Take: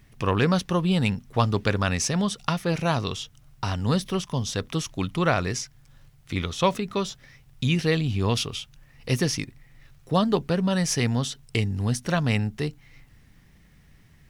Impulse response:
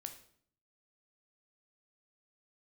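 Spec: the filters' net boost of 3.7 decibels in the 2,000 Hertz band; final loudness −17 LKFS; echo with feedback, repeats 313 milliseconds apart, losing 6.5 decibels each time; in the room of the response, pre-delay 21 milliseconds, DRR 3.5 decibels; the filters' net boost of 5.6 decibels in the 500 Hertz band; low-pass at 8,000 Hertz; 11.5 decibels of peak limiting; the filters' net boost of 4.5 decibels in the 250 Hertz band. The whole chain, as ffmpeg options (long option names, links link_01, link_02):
-filter_complex "[0:a]lowpass=8000,equalizer=frequency=250:width_type=o:gain=5.5,equalizer=frequency=500:width_type=o:gain=5,equalizer=frequency=2000:width_type=o:gain=4.5,alimiter=limit=-14.5dB:level=0:latency=1,aecho=1:1:313|626|939|1252|1565|1878:0.473|0.222|0.105|0.0491|0.0231|0.0109,asplit=2[link_01][link_02];[1:a]atrim=start_sample=2205,adelay=21[link_03];[link_02][link_03]afir=irnorm=-1:irlink=0,volume=0.5dB[link_04];[link_01][link_04]amix=inputs=2:normalize=0,volume=6dB"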